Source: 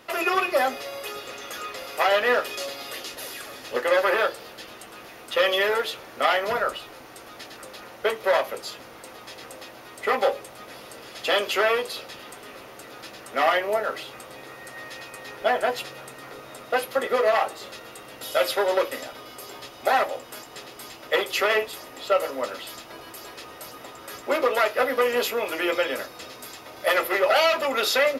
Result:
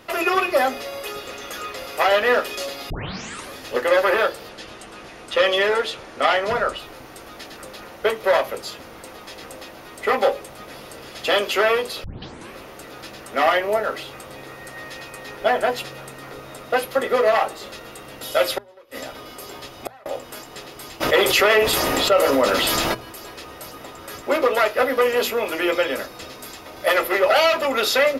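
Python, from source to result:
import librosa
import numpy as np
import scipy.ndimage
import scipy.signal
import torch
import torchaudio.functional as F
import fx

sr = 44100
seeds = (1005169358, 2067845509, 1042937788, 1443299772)

y = fx.lowpass(x, sr, hz=10000.0, slope=24, at=(4.49, 6.78))
y = fx.gate_flip(y, sr, shuts_db=-16.0, range_db=-29, at=(18.56, 20.06))
y = fx.env_flatten(y, sr, amount_pct=70, at=(21.0, 22.93), fade=0.02)
y = fx.edit(y, sr, fx.tape_start(start_s=2.9, length_s=0.63),
    fx.tape_start(start_s=12.04, length_s=0.5), tone=tone)
y = fx.low_shelf(y, sr, hz=180.0, db=10.5)
y = fx.hum_notches(y, sr, base_hz=60, count=4)
y = y * librosa.db_to_amplitude(2.5)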